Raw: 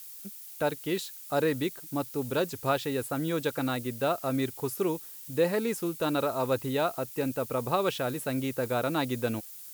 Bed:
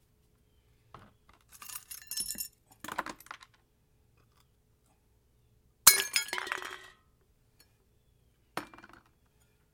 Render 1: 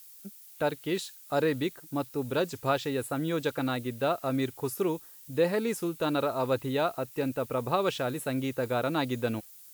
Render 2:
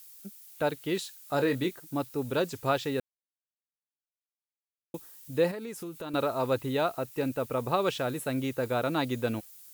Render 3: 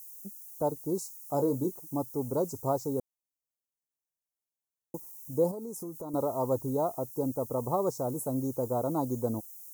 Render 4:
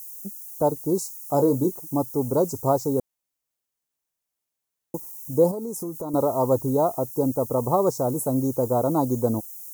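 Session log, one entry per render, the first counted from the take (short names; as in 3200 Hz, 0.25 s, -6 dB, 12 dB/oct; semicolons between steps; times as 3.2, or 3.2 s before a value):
noise print and reduce 6 dB
1.19–1.79 doubler 22 ms -8 dB; 3–4.94 mute; 5.51–6.14 compressor 3:1, threshold -38 dBFS
elliptic band-stop 990–5900 Hz, stop band 50 dB; high shelf 6300 Hz +4.5 dB
gain +8 dB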